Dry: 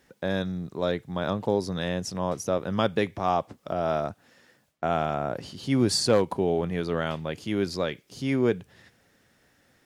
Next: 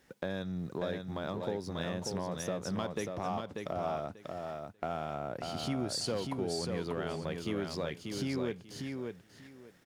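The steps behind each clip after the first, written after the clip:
downward compressor 4 to 1, threshold −36 dBFS, peak gain reduction 16.5 dB
leveller curve on the samples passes 1
on a send: repeating echo 590 ms, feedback 19%, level −4.5 dB
on the sum: level −2 dB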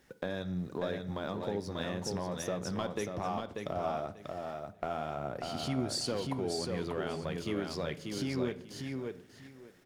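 phase shifter 1.9 Hz, delay 4.4 ms, feedback 26%
on a send at −13 dB: convolution reverb RT60 0.70 s, pre-delay 3 ms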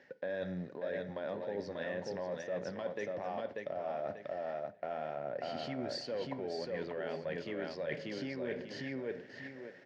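loudspeaker in its box 170–4,700 Hz, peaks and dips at 190 Hz −3 dB, 330 Hz −3 dB, 560 Hz +9 dB, 1,200 Hz −8 dB, 1,800 Hz +9 dB, 3,600 Hz −6 dB
reversed playback
downward compressor 6 to 1, threshold −41 dBFS, peak gain reduction 15.5 dB
reversed playback
level +5 dB

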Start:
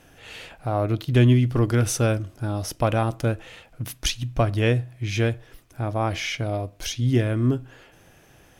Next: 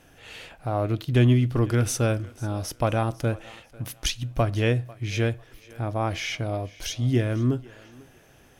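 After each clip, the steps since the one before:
feedback echo with a high-pass in the loop 496 ms, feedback 29%, high-pass 290 Hz, level −20.5 dB
level −2 dB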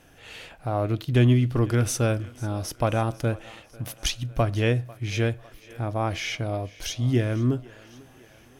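feedback echo with a high-pass in the loop 1,049 ms, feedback 40%, high-pass 570 Hz, level −24 dB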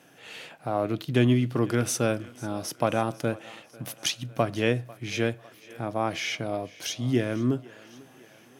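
high-pass filter 140 Hz 24 dB per octave

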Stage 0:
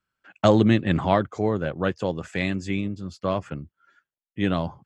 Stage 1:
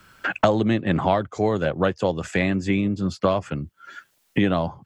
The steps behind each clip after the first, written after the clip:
dynamic equaliser 700 Hz, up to +5 dB, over −31 dBFS, Q 1
multiband upward and downward compressor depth 100%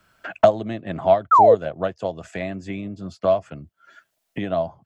parametric band 660 Hz +13.5 dB 0.24 octaves
sound drawn into the spectrogram fall, 0:01.31–0:01.55, 420–1,400 Hz −8 dBFS
expander for the loud parts 1.5 to 1, over −19 dBFS
level −2.5 dB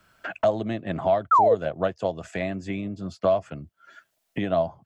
brickwall limiter −12 dBFS, peak gain reduction 10.5 dB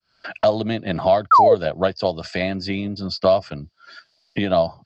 fade in at the beginning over 0.52 s
low-pass with resonance 4,700 Hz, resonance Q 12
level +5 dB

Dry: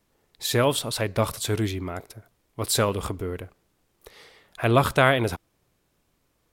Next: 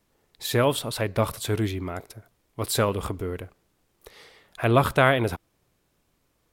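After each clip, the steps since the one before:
dynamic equaliser 6,300 Hz, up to −5 dB, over −43 dBFS, Q 0.76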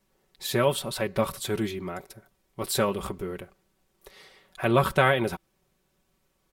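comb filter 5.3 ms, depth 65%
level −3 dB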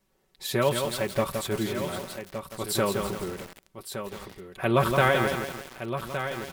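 single-tap delay 1,166 ms −9.5 dB
feedback echo at a low word length 169 ms, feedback 55%, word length 6 bits, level −5 dB
level −1 dB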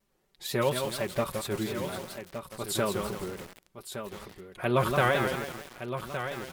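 pitch vibrato 4.3 Hz 95 cents
level −3 dB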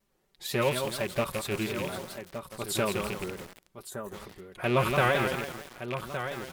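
loose part that buzzes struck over −35 dBFS, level −24 dBFS
gain on a spectral selection 0:03.90–0:04.14, 2,000–5,800 Hz −11 dB

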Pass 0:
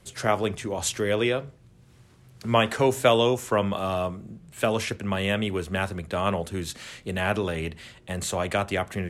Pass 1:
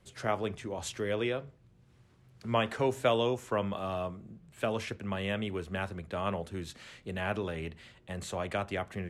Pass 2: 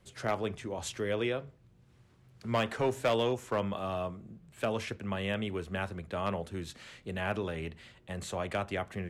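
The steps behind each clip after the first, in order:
high-shelf EQ 6,200 Hz −9.5 dB; level −7.5 dB
hard clipping −22 dBFS, distortion −18 dB

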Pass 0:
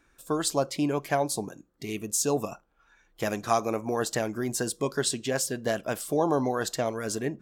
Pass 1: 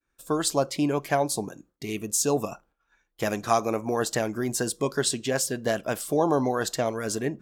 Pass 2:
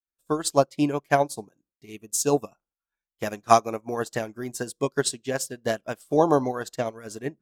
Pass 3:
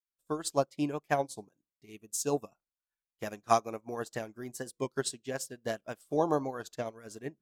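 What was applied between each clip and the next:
downward expander −54 dBFS; level +2 dB
expander for the loud parts 2.5 to 1, over −39 dBFS; level +8 dB
wow of a warped record 33 1/3 rpm, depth 100 cents; level −8.5 dB

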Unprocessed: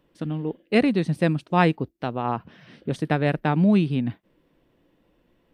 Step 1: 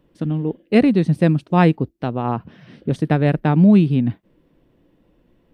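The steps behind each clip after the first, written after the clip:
low-shelf EQ 490 Hz +8 dB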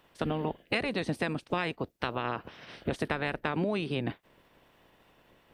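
ceiling on every frequency bin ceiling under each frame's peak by 23 dB
downward compressor 12 to 1, threshold −22 dBFS, peak gain reduction 15 dB
level −4.5 dB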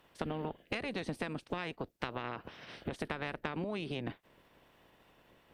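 downward compressor 5 to 1, threshold −32 dBFS, peak gain reduction 8 dB
tube saturation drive 20 dB, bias 0.65
level +1.5 dB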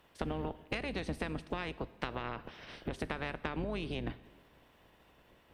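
sub-octave generator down 2 octaves, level −3 dB
dense smooth reverb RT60 1.4 s, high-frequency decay 0.95×, DRR 15.5 dB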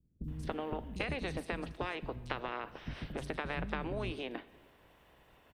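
three-band delay without the direct sound lows, highs, mids 240/280 ms, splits 240/4,800 Hz
level +1 dB

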